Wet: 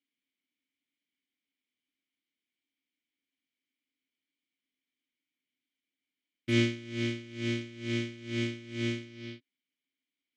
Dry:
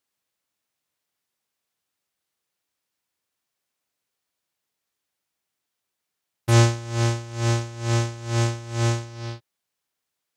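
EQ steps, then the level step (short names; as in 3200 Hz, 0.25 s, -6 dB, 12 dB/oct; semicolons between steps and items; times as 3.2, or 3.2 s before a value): vowel filter i; +8.0 dB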